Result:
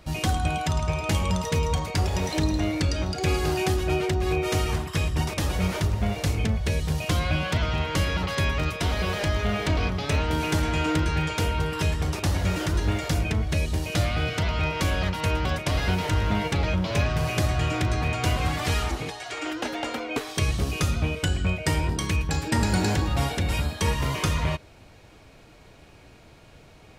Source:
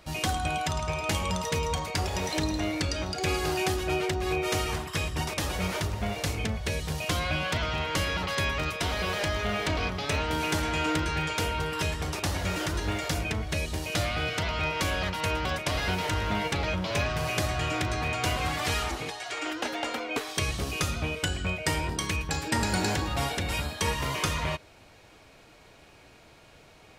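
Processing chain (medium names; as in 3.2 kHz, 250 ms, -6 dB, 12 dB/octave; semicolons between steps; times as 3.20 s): bass shelf 310 Hz +8 dB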